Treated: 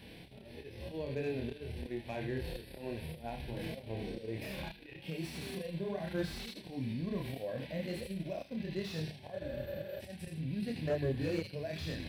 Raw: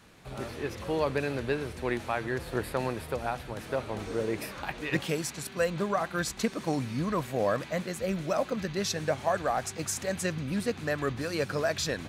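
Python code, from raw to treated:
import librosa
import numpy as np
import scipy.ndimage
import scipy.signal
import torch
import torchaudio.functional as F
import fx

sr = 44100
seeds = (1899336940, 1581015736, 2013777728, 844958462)

p1 = fx.fixed_phaser(x, sr, hz=3000.0, stages=4)
p2 = fx.auto_swell(p1, sr, attack_ms=693.0)
p3 = fx.high_shelf(p2, sr, hz=10000.0, db=-3.5)
p4 = p3 + fx.echo_wet_highpass(p3, sr, ms=80, feedback_pct=30, hz=2800.0, wet_db=-4.5, dry=0)
p5 = fx.chorus_voices(p4, sr, voices=4, hz=1.0, base_ms=28, depth_ms=3.0, mix_pct=40)
p6 = fx.spec_repair(p5, sr, seeds[0], start_s=9.43, length_s=0.55, low_hz=340.0, high_hz=12000.0, source='before')
p7 = fx.over_compress(p6, sr, threshold_db=-49.0, ratio=-1.0)
p8 = p6 + (p7 * librosa.db_to_amplitude(2.0))
p9 = fx.transient(p8, sr, attack_db=3, sustain_db=-7)
p10 = fx.hpss(p9, sr, part='percussive', gain_db=-12)
p11 = fx.hum_notches(p10, sr, base_hz=50, count=4)
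p12 = fx.slew_limit(p11, sr, full_power_hz=16.0)
y = p12 * librosa.db_to_amplitude(3.0)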